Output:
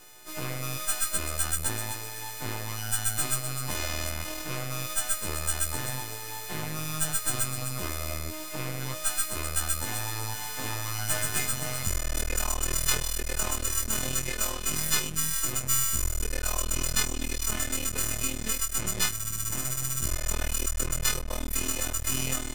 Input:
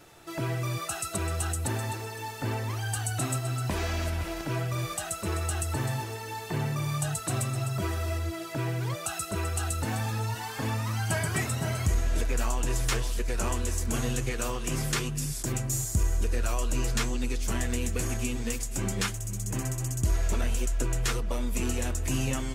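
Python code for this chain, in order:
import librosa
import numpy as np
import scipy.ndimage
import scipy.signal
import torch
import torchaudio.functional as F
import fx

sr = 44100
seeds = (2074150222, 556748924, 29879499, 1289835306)

y = fx.freq_snap(x, sr, grid_st=3)
y = np.maximum(y, 0.0)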